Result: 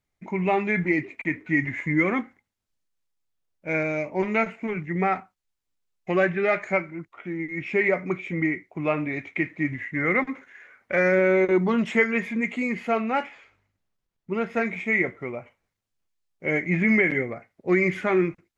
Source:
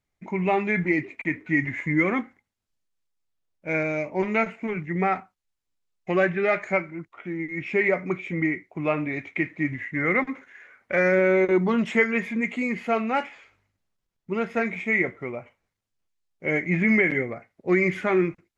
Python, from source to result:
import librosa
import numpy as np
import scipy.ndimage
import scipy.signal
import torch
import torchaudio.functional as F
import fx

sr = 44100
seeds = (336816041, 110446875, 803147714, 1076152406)

y = fx.high_shelf(x, sr, hz=5000.0, db=-5.0, at=(12.92, 14.53))